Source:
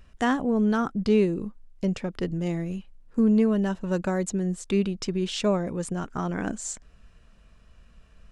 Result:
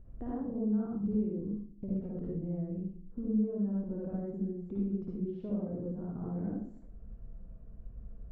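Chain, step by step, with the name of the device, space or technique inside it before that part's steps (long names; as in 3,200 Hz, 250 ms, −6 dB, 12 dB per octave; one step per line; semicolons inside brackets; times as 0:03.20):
television next door (downward compressor 3 to 1, threshold −41 dBFS, peak gain reduction 18 dB; low-pass filter 440 Hz 12 dB per octave; convolution reverb RT60 0.50 s, pre-delay 50 ms, DRR −5 dB)
level −1.5 dB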